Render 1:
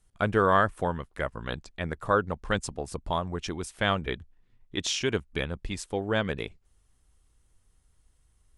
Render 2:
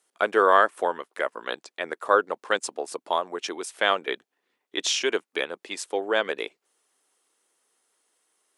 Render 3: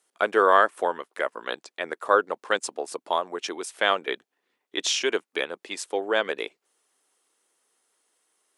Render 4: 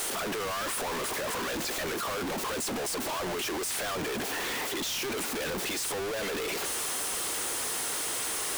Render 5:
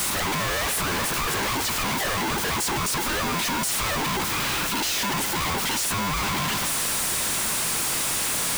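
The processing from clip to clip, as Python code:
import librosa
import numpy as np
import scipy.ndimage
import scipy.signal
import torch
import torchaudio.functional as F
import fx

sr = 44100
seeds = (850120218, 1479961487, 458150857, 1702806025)

y1 = scipy.signal.sosfilt(scipy.signal.butter(4, 350.0, 'highpass', fs=sr, output='sos'), x)
y1 = F.gain(torch.from_numpy(y1), 4.5).numpy()
y2 = y1
y3 = np.sign(y2) * np.sqrt(np.mean(np.square(y2)))
y3 = F.gain(torch.from_numpy(y3), -4.5).numpy()
y4 = y3 * np.sign(np.sin(2.0 * np.pi * 600.0 * np.arange(len(y3)) / sr))
y4 = F.gain(torch.from_numpy(y4), 7.0).numpy()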